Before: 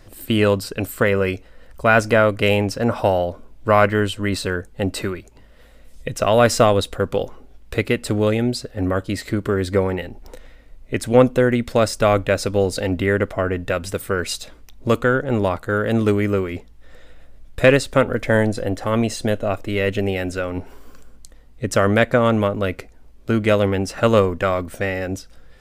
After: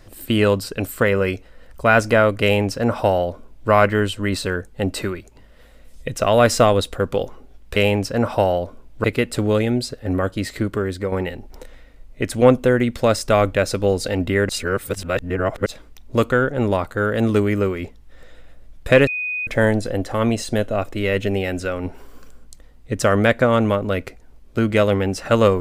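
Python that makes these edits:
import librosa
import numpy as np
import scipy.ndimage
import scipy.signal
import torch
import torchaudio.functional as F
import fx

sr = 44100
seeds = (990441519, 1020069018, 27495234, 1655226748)

y = fx.edit(x, sr, fx.duplicate(start_s=2.42, length_s=1.28, to_s=7.76),
    fx.fade_out_to(start_s=9.34, length_s=0.5, floor_db=-8.0),
    fx.reverse_span(start_s=13.21, length_s=1.17),
    fx.bleep(start_s=17.79, length_s=0.4, hz=2490.0, db=-22.0), tone=tone)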